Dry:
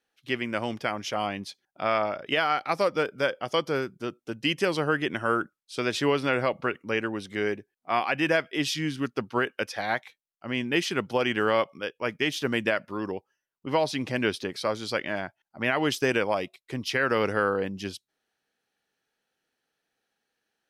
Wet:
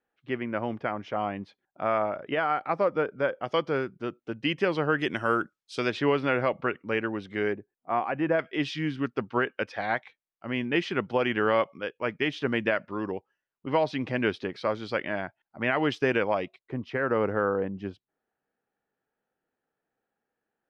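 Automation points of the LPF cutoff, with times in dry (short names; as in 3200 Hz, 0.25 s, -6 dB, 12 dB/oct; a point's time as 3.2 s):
1600 Hz
from 3.44 s 2700 Hz
from 4.99 s 7000 Hz
from 5.9 s 2700 Hz
from 7.53 s 1200 Hz
from 8.39 s 2700 Hz
from 16.59 s 1300 Hz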